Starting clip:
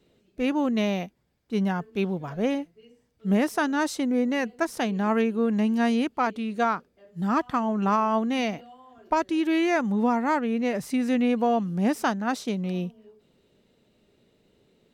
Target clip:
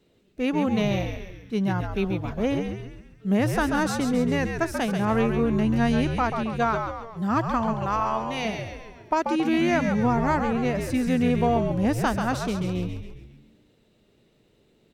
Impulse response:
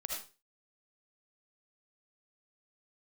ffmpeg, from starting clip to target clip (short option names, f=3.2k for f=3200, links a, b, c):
-filter_complex "[0:a]asettb=1/sr,asplit=3[a][b][c];[a]atrim=end=7.734[d];[b]atrim=start=7.73:end=8.45,asetpts=PTS-STARTPTS,afade=t=in:d=0.004:c=qsin,afade=t=out:st=0.716:d=0.004:c=qsin,lowshelf=f=480:g=-12[e];[c]atrim=start=8.446[f];[d][e]acrossfade=d=0.004:c1=hsin:c2=qsin[g];[g][f]acrossfade=d=0.004:c1=qsin:c2=hsin,asplit=7[h][i][j][k][l][m][n];[i]adelay=136,afreqshift=-80,volume=-5.5dB[o];[j]adelay=272,afreqshift=-160,volume=-11.5dB[p];[k]adelay=408,afreqshift=-240,volume=-17.5dB[q];[l]adelay=544,afreqshift=-320,volume=-23.6dB[r];[m]adelay=680,afreqshift=-400,volume=-29.6dB[s];[n]adelay=816,afreqshift=-480,volume=-35.6dB[t];[h][o][p][q][r][s][t]amix=inputs=7:normalize=0"